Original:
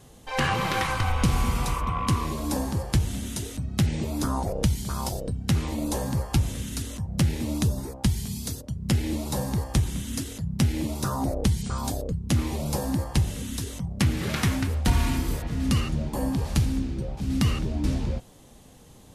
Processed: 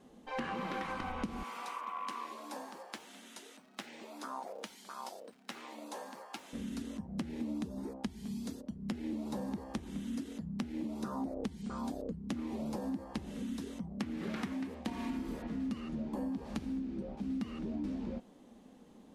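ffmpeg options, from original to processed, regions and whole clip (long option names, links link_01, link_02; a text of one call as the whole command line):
ffmpeg -i in.wav -filter_complex "[0:a]asettb=1/sr,asplit=3[link_01][link_02][link_03];[link_01]atrim=end=1.434[link_04];[link_02]atrim=start=1.43:end=6.53,asetpts=PTS-STARTPTS,afade=type=in:duration=0.004:curve=qsin,afade=type=out:start_time=5.096:duration=0.004:curve=qsin,acrusher=bits=7:mode=log:mix=0:aa=0.000001,highpass=810[link_05];[link_03]atrim=start=6.526[link_06];[link_04][link_05]acrossfade=duration=0.004:curve1=hsin:curve2=qsin[link_07];[link_07][link_06]acrossfade=duration=0.004:curve1=qsin:curve2=hsin,asettb=1/sr,asplit=3[link_08][link_09][link_10];[link_08]atrim=end=14.534[link_11];[link_09]atrim=start=14.53:end=15.1,asetpts=PTS-STARTPTS,afade=type=in:duration=0.004:curve=qsin,afade=type=out:start_time=0.566:duration=0.004:curve=qsin,highpass=frequency=170:poles=1,bandreject=frequency=1400:width=6.4[link_12];[link_10]atrim=start=15.096[link_13];[link_11][link_12]acrossfade=duration=0.004:curve1=hsin:curve2=qsin[link_14];[link_14][link_13]acrossfade=duration=0.004:curve1=qsin:curve2=hsin,lowpass=frequency=1900:poles=1,lowshelf=frequency=160:width_type=q:width=3:gain=-10.5,acompressor=threshold=-28dB:ratio=6,volume=-6.5dB" out.wav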